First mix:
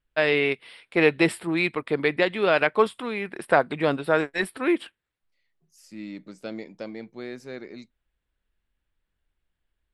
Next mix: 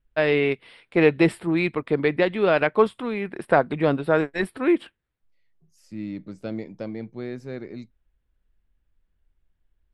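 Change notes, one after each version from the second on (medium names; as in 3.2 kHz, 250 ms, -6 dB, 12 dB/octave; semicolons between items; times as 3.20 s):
second voice: add peaking EQ 96 Hz +10 dB 0.84 oct; master: add tilt EQ -2 dB/octave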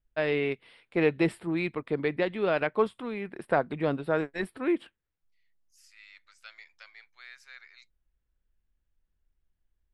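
first voice -7.0 dB; second voice: add high-pass 1.4 kHz 24 dB/octave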